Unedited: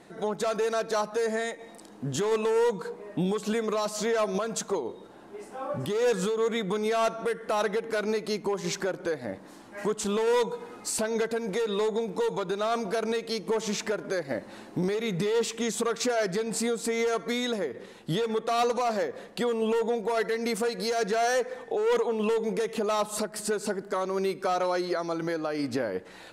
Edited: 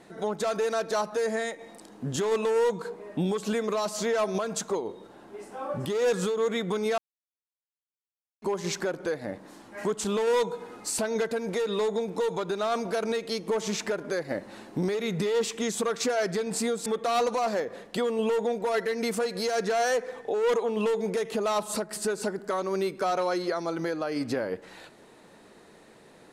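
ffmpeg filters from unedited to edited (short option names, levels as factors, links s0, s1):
-filter_complex "[0:a]asplit=4[s0][s1][s2][s3];[s0]atrim=end=6.98,asetpts=PTS-STARTPTS,afade=t=out:st=6.976:d=0.004:c=hsin[s4];[s1]atrim=start=6.98:end=8.42,asetpts=PTS-STARTPTS,volume=0[s5];[s2]atrim=start=8.42:end=16.862,asetpts=PTS-STARTPTS,afade=t=in:d=0.004:c=hsin[s6];[s3]atrim=start=18.288[s7];[s4][s5][s6]concat=n=3:v=0:a=1[s8];[s8][s7]acrossfade=d=0.004:c1=hsin:c2=hsin"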